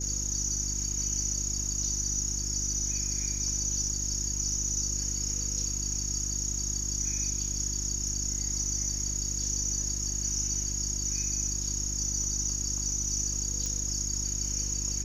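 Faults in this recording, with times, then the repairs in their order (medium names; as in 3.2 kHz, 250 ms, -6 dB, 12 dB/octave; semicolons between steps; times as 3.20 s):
hum 50 Hz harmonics 7 -36 dBFS
13.66 s: pop -20 dBFS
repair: de-click; de-hum 50 Hz, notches 7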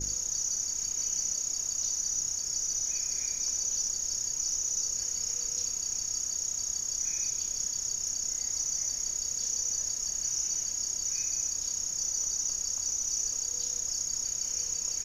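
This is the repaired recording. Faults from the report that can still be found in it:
nothing left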